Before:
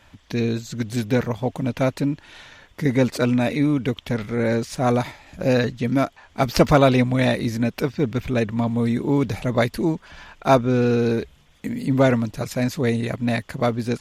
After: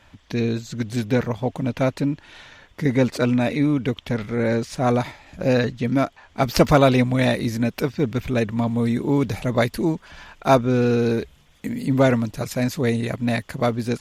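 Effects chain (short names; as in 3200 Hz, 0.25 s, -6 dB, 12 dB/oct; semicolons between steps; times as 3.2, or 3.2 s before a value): high shelf 8800 Hz -5.5 dB, from 6.47 s +3.5 dB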